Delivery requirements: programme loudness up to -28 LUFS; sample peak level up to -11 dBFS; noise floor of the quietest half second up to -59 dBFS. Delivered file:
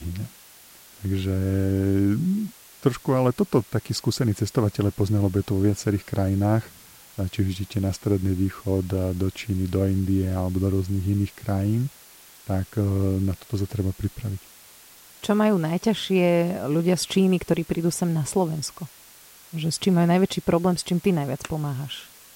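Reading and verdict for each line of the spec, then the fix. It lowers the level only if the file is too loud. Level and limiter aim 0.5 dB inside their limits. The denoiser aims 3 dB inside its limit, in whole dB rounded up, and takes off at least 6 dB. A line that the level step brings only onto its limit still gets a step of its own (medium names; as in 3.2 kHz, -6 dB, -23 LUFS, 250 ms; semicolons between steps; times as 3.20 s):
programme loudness -24.5 LUFS: fail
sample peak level -7.0 dBFS: fail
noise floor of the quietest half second -49 dBFS: fail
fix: noise reduction 9 dB, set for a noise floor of -49 dBFS; trim -4 dB; peak limiter -11.5 dBFS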